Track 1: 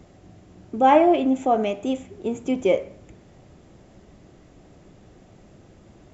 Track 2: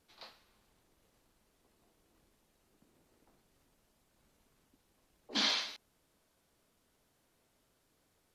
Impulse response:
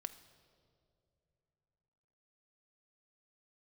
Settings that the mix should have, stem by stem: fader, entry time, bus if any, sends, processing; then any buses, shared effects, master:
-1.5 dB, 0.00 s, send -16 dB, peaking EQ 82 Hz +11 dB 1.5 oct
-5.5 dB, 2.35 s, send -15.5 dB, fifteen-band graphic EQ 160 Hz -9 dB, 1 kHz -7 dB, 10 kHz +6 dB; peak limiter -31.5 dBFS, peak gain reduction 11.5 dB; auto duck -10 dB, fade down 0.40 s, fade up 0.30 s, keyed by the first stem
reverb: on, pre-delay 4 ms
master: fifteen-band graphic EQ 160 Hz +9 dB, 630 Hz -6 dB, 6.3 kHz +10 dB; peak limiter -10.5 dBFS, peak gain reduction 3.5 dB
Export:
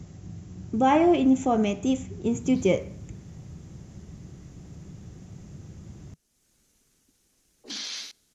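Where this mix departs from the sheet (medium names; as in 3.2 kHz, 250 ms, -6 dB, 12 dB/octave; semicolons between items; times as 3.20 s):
stem 1: send off; stem 2 -5.5 dB -> +2.0 dB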